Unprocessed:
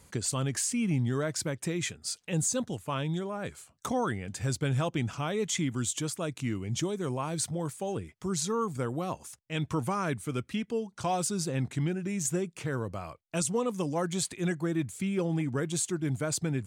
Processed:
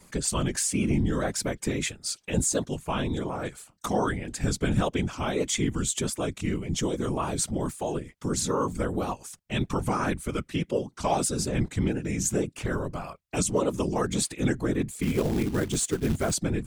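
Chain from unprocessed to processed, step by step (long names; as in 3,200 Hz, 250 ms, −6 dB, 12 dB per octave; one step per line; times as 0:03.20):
pitch vibrato 1.7 Hz 51 cents
random phases in short frames
0:15.02–0:16.34: floating-point word with a short mantissa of 2 bits
level +3.5 dB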